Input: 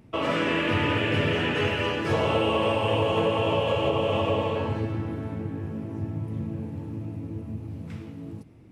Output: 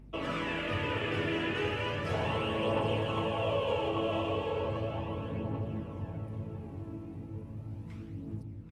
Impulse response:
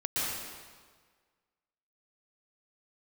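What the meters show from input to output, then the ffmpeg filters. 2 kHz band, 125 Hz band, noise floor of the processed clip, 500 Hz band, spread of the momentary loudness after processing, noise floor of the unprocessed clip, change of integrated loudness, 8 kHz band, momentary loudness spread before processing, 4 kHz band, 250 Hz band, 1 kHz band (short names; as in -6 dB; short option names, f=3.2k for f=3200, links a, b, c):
-7.5 dB, -7.0 dB, -45 dBFS, -7.5 dB, 12 LU, -41 dBFS, -8.0 dB, n/a, 13 LU, -8.0 dB, -7.5 dB, -7.0 dB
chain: -filter_complex "[0:a]aeval=exprs='val(0)+0.00562*(sin(2*PI*50*n/s)+sin(2*PI*2*50*n/s)/2+sin(2*PI*3*50*n/s)/3+sin(2*PI*4*50*n/s)/4+sin(2*PI*5*50*n/s)/5)':c=same,asplit=2[a][b];[b]adelay=789,lowpass=f=2.4k:p=1,volume=-5.5dB,asplit=2[c][d];[d]adelay=789,lowpass=f=2.4k:p=1,volume=0.37,asplit=2[e][f];[f]adelay=789,lowpass=f=2.4k:p=1,volume=0.37,asplit=2[g][h];[h]adelay=789,lowpass=f=2.4k:p=1,volume=0.37[i];[a][c][e][g][i]amix=inputs=5:normalize=0,aphaser=in_gain=1:out_gain=1:delay=3.1:decay=0.37:speed=0.36:type=triangular,volume=-9dB"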